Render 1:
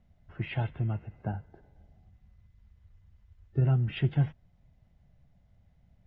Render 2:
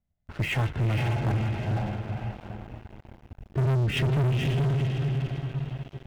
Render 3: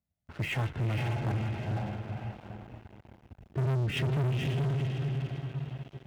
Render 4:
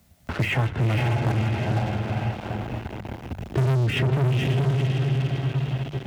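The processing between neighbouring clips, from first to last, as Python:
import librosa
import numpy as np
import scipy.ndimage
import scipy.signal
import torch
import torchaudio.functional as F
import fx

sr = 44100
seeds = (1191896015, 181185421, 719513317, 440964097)

y1 = fx.echo_diffused(x, sr, ms=482, feedback_pct=43, wet_db=-3)
y1 = fx.leveller(y1, sr, passes=5)
y1 = y1 * librosa.db_to_amplitude(-6.5)
y2 = scipy.signal.sosfilt(scipy.signal.butter(2, 66.0, 'highpass', fs=sr, output='sos'), y1)
y2 = y2 * librosa.db_to_amplitude(-4.5)
y3 = fx.hum_notches(y2, sr, base_hz=50, count=4)
y3 = fx.band_squash(y3, sr, depth_pct=70)
y3 = y3 * librosa.db_to_amplitude(8.5)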